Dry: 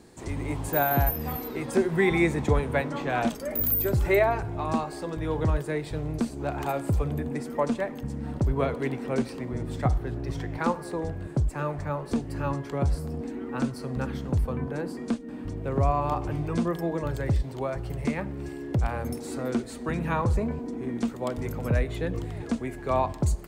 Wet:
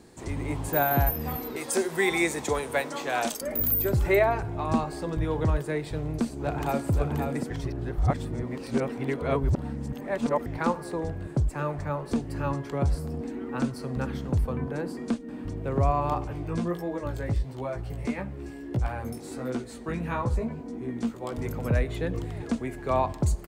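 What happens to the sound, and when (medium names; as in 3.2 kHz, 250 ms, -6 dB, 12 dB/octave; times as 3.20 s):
1.56–3.41 s: tone controls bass -14 dB, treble +12 dB
4.71–5.25 s: bass shelf 140 Hz +9 dB
5.91–6.90 s: echo throw 530 ms, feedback 10%, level -5 dB
7.50–10.46 s: reverse
16.24–21.33 s: chorus 1.5 Hz, delay 15.5 ms, depth 3.1 ms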